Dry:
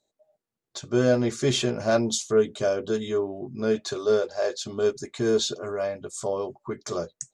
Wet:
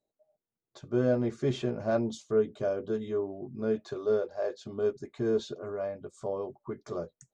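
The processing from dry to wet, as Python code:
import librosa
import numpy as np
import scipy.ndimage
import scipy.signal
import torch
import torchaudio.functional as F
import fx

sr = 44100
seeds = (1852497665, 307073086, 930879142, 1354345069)

y = fx.lowpass(x, sr, hz=1000.0, slope=6)
y = y * librosa.db_to_amplitude(-4.5)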